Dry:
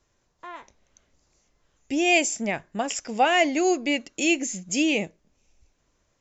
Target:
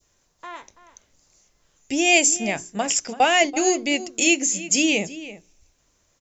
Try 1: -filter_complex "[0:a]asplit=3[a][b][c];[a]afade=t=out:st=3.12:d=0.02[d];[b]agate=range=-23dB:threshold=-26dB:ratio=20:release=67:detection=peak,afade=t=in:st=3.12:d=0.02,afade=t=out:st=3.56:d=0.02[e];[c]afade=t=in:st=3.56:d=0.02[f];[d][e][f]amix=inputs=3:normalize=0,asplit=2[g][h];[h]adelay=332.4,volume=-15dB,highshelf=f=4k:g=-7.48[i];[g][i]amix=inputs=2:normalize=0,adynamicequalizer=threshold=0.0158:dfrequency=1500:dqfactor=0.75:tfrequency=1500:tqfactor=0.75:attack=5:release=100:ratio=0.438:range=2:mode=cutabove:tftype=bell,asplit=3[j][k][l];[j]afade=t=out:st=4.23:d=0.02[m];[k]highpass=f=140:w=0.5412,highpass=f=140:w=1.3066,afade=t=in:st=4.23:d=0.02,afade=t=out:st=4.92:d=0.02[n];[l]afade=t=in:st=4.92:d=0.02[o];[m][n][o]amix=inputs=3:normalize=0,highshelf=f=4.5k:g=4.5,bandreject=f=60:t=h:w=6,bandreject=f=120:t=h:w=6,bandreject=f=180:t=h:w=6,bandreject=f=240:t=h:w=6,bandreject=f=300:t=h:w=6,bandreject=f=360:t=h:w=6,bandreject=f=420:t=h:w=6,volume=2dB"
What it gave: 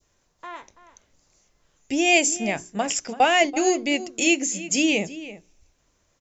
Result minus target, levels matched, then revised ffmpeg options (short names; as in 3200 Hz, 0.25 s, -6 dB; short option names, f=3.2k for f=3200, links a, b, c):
8000 Hz band -2.5 dB
-filter_complex "[0:a]asplit=3[a][b][c];[a]afade=t=out:st=3.12:d=0.02[d];[b]agate=range=-23dB:threshold=-26dB:ratio=20:release=67:detection=peak,afade=t=in:st=3.12:d=0.02,afade=t=out:st=3.56:d=0.02[e];[c]afade=t=in:st=3.56:d=0.02[f];[d][e][f]amix=inputs=3:normalize=0,asplit=2[g][h];[h]adelay=332.4,volume=-15dB,highshelf=f=4k:g=-7.48[i];[g][i]amix=inputs=2:normalize=0,adynamicequalizer=threshold=0.0158:dfrequency=1500:dqfactor=0.75:tfrequency=1500:tqfactor=0.75:attack=5:release=100:ratio=0.438:range=2:mode=cutabove:tftype=bell,asplit=3[j][k][l];[j]afade=t=out:st=4.23:d=0.02[m];[k]highpass=f=140:w=0.5412,highpass=f=140:w=1.3066,afade=t=in:st=4.23:d=0.02,afade=t=out:st=4.92:d=0.02[n];[l]afade=t=in:st=4.92:d=0.02[o];[m][n][o]amix=inputs=3:normalize=0,highshelf=f=4.5k:g=11,bandreject=f=60:t=h:w=6,bandreject=f=120:t=h:w=6,bandreject=f=180:t=h:w=6,bandreject=f=240:t=h:w=6,bandreject=f=300:t=h:w=6,bandreject=f=360:t=h:w=6,bandreject=f=420:t=h:w=6,volume=2dB"